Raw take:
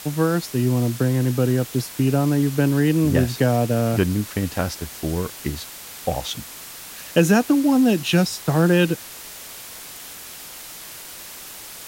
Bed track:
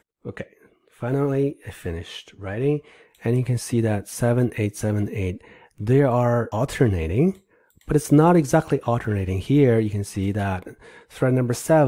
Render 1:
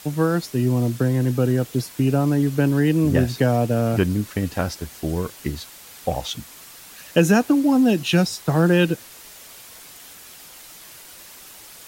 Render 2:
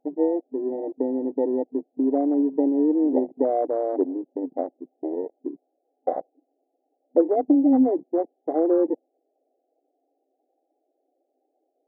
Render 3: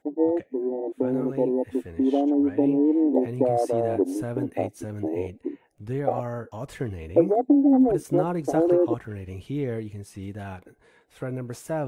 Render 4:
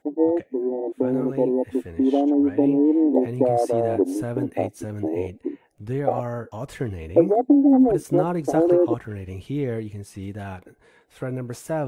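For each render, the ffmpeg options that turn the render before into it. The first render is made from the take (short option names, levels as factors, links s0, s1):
-af "afftdn=nr=6:nf=-38"
-af "afftfilt=real='re*between(b*sr/4096,250,820)':imag='im*between(b*sr/4096,250,820)':win_size=4096:overlap=0.75,afwtdn=0.0447"
-filter_complex "[1:a]volume=0.251[s0];[0:a][s0]amix=inputs=2:normalize=0"
-af "volume=1.33"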